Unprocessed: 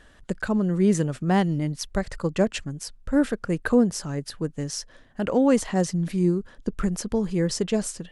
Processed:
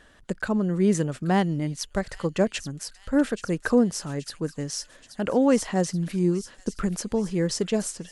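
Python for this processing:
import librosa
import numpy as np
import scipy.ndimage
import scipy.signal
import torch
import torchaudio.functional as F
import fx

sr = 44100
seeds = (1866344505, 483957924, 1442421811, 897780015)

y = fx.low_shelf(x, sr, hz=110.0, db=-6.0)
y = fx.echo_wet_highpass(y, sr, ms=828, feedback_pct=60, hz=3400.0, wet_db=-10.0)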